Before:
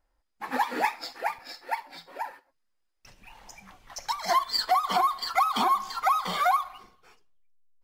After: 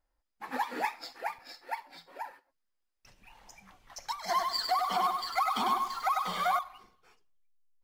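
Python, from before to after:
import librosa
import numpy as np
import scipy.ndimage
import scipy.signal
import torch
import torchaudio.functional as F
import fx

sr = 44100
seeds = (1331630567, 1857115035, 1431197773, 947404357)

y = fx.echo_crushed(x, sr, ms=99, feedback_pct=35, bits=8, wet_db=-4.0, at=(4.25, 6.59))
y = F.gain(torch.from_numpy(y), -6.0).numpy()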